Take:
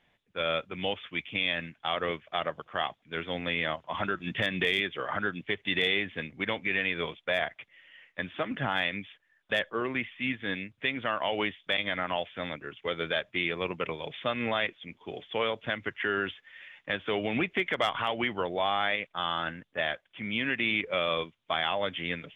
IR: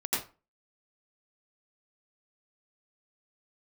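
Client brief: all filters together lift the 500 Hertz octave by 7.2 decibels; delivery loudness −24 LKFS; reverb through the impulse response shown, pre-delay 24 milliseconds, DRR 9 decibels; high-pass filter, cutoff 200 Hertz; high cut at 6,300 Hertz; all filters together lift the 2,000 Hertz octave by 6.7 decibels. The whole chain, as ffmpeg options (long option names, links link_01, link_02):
-filter_complex "[0:a]highpass=200,lowpass=6300,equalizer=frequency=500:width_type=o:gain=8.5,equalizer=frequency=2000:width_type=o:gain=7.5,asplit=2[link_01][link_02];[1:a]atrim=start_sample=2205,adelay=24[link_03];[link_02][link_03]afir=irnorm=-1:irlink=0,volume=-16.5dB[link_04];[link_01][link_04]amix=inputs=2:normalize=0,volume=0.5dB"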